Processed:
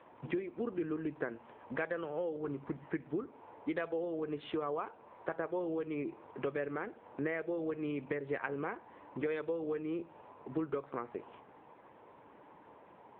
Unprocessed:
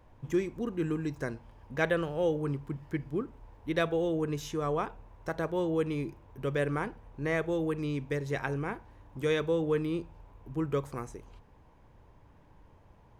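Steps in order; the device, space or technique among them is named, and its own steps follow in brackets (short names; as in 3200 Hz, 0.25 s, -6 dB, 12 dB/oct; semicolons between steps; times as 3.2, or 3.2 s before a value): 6.61–7.51 dynamic EQ 1000 Hz, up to -7 dB, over -51 dBFS, Q 3; voicemail (BPF 310–2700 Hz; compressor 8:1, threshold -42 dBFS, peak gain reduction 18.5 dB; gain +9.5 dB; AMR-NB 6.7 kbps 8000 Hz)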